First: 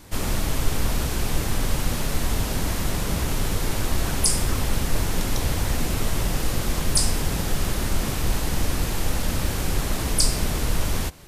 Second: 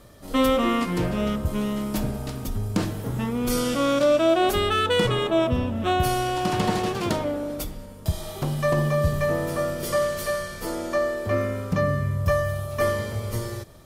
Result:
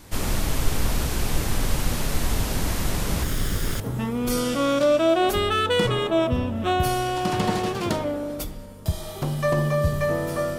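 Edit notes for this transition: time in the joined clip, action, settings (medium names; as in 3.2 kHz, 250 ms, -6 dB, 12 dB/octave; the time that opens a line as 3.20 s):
first
3.23–3.80 s: comb filter that takes the minimum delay 0.58 ms
3.80 s: go over to second from 3.00 s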